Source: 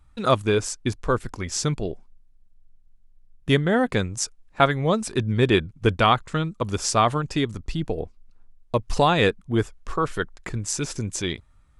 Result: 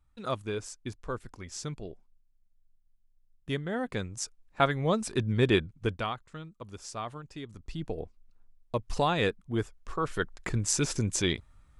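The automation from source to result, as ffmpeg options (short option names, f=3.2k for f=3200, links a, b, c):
-af "volume=12.5dB,afade=t=in:st=3.66:d=1.35:silence=0.398107,afade=t=out:st=5.54:d=0.6:silence=0.223872,afade=t=in:st=7.43:d=0.47:silence=0.316228,afade=t=in:st=9.96:d=0.55:silence=0.421697"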